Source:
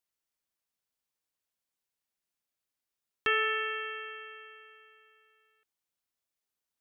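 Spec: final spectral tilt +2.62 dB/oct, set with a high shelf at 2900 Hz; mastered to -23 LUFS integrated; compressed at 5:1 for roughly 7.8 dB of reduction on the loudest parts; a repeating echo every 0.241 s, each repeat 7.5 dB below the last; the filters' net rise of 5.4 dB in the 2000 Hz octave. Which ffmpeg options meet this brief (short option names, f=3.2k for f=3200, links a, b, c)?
-af "equalizer=f=2k:t=o:g=5,highshelf=f=2.9k:g=4,acompressor=threshold=-28dB:ratio=5,aecho=1:1:241|482|723|964|1205:0.422|0.177|0.0744|0.0312|0.0131,volume=10dB"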